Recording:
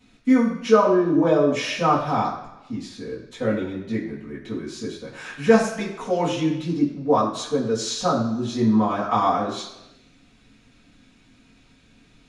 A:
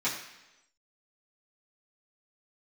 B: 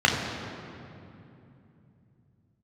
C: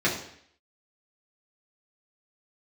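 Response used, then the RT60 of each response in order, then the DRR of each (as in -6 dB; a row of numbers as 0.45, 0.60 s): A; 1.0, 2.8, 0.65 s; -11.0, -1.5, -6.5 dB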